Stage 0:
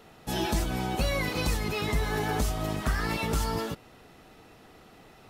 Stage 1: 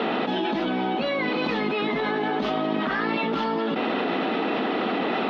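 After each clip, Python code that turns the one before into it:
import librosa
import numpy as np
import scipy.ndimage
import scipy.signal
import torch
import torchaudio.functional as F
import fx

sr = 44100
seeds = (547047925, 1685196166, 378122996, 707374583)

y = scipy.signal.sosfilt(scipy.signal.ellip(3, 1.0, 40, [230.0, 3500.0], 'bandpass', fs=sr, output='sos'), x)
y = fx.low_shelf(y, sr, hz=380.0, db=6.0)
y = fx.env_flatten(y, sr, amount_pct=100)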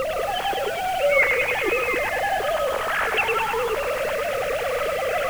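y = fx.sine_speech(x, sr)
y = fx.dmg_noise_colour(y, sr, seeds[0], colour='pink', level_db=-40.0)
y = fx.echo_thinned(y, sr, ms=104, feedback_pct=70, hz=1000.0, wet_db=-3.5)
y = y * 10.0 ** (1.0 / 20.0)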